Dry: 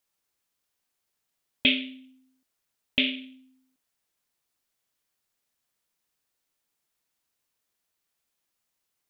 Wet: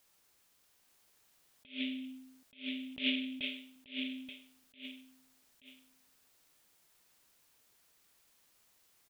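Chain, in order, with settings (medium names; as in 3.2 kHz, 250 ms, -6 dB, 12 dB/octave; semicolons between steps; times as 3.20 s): feedback delay 879 ms, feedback 15%, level -5.5 dB; compression 2:1, threshold -41 dBFS, peak gain reduction 13 dB; attacks held to a fixed rise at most 200 dB/s; trim +10 dB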